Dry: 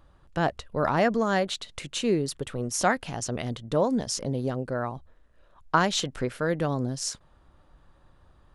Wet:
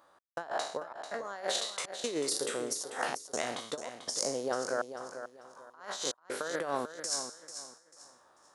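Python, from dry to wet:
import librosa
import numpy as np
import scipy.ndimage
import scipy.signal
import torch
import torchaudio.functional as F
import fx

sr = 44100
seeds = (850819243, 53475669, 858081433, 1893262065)

y = fx.spec_trails(x, sr, decay_s=0.57)
y = scipy.signal.sosfilt(scipy.signal.butter(2, 580.0, 'highpass', fs=sr, output='sos'), y)
y = fx.peak_eq(y, sr, hz=2800.0, db=-8.5, octaves=0.98)
y = fx.over_compress(y, sr, threshold_db=-33.0, ratio=-0.5)
y = fx.step_gate(y, sr, bpm=81, pattern='x.xxx.xxxx.xxxxx', floor_db=-60.0, edge_ms=4.5)
y = fx.echo_feedback(y, sr, ms=442, feedback_pct=27, wet_db=-10.0)
y = F.gain(torch.from_numpy(y), -1.0).numpy()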